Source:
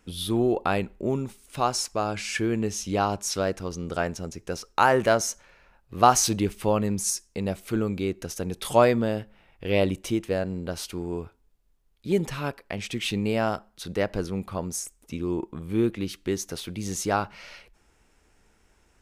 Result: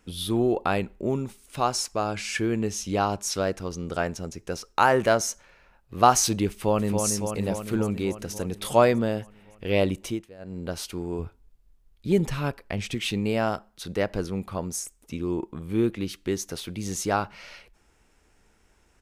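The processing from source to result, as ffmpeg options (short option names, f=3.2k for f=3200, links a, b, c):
-filter_complex "[0:a]asplit=2[a][b];[b]afade=t=in:st=6.5:d=0.01,afade=t=out:st=7.02:d=0.01,aecho=0:1:280|560|840|1120|1400|1680|1960|2240|2520|2800|3080|3360:0.562341|0.393639|0.275547|0.192883|0.135018|0.0945127|0.0661589|0.0463112|0.0324179|0.0226925|0.0158848|0.0111193[c];[a][c]amix=inputs=2:normalize=0,asettb=1/sr,asplit=3[d][e][f];[d]atrim=end=11.194[g];[e]atrim=start=11.19:end=12.95,asetpts=PTS-STARTPTS,afade=t=in:d=0.004:c=qsin,afade=t=out:st=1.756:d=0.004:c=qsin,lowshelf=f=140:g=9.5[h];[f]atrim=start=12.946[i];[g][h]acrossfade=d=0.004:c1=hsin:c2=qsin[j];[j][i]acrossfade=d=0.004:c1=qsin:c2=hsin,asplit=3[k][l][m];[k]atrim=end=10.3,asetpts=PTS-STARTPTS,afade=t=out:st=10.03:d=0.27:silence=0.0944061[n];[l]atrim=start=10.3:end=10.38,asetpts=PTS-STARTPTS,volume=-20.5dB[o];[m]atrim=start=10.38,asetpts=PTS-STARTPTS,afade=t=in:d=0.27:silence=0.0944061[p];[n][o][p]concat=n=3:v=0:a=1"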